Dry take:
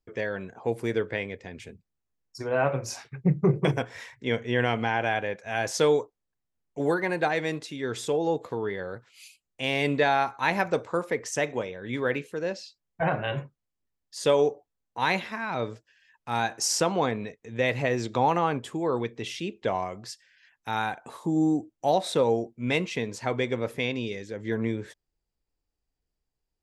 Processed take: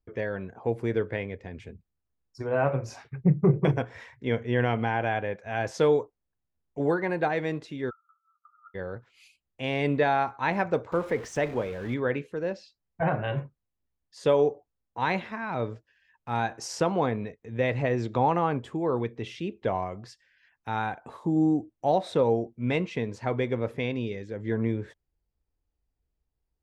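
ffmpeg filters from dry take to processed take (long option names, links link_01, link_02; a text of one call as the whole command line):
ffmpeg -i in.wav -filter_complex "[0:a]asplit=3[link_01][link_02][link_03];[link_01]afade=type=out:start_time=7.89:duration=0.02[link_04];[link_02]asuperpass=centerf=1300:order=12:qfactor=6.5,afade=type=in:start_time=7.89:duration=0.02,afade=type=out:start_time=8.74:duration=0.02[link_05];[link_03]afade=type=in:start_time=8.74:duration=0.02[link_06];[link_04][link_05][link_06]amix=inputs=3:normalize=0,asettb=1/sr,asplit=3[link_07][link_08][link_09];[link_07]atrim=end=10.924[link_10];[link_08]atrim=start=10.92:end=11.94,asetpts=PTS-STARTPTS,afade=type=in:duration=0.004:curve=qsin,afade=type=out:start_time=1.016:duration=0.004:curve=qsin,aeval=exprs='val(0)+0.5*0.015*sgn(val(0))':channel_layout=same[link_11];[link_09]atrim=start=11.936[link_12];[link_10][link_11]acrossfade=duration=0.004:curve1=hsin:curve2=qsin[link_13];[link_13][link_12]acrossfade=duration=0.004:curve1=qsin:curve2=hsin,lowpass=frequency=1700:poles=1,equalizer=frequency=62:width=0.91:gain=8" out.wav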